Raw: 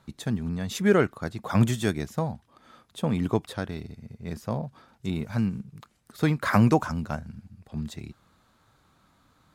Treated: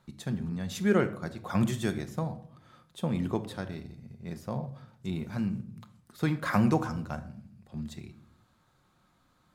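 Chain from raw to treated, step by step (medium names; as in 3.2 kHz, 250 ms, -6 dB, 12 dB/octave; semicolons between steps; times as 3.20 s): simulated room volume 960 m³, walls furnished, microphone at 0.92 m; trim -5.5 dB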